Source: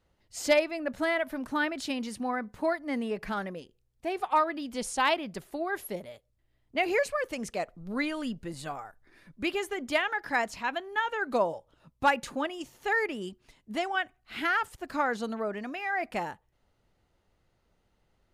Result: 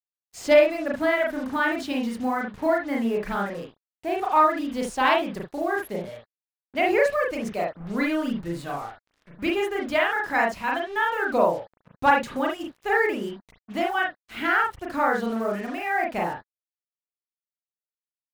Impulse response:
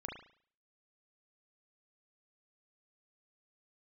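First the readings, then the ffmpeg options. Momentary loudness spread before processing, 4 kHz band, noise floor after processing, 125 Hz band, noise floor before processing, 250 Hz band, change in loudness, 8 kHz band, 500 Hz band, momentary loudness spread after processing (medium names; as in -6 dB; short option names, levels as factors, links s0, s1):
12 LU, +2.0 dB, under -85 dBFS, +7.0 dB, -73 dBFS, +6.5 dB, +6.0 dB, -2.0 dB, +7.0 dB, 12 LU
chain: -filter_complex "[0:a]highshelf=f=4500:g=-7.5,acrusher=bits=7:mix=0:aa=0.5[s0];[1:a]atrim=start_sample=2205,atrim=end_sample=3528[s1];[s0][s1]afir=irnorm=-1:irlink=0,volume=2.37"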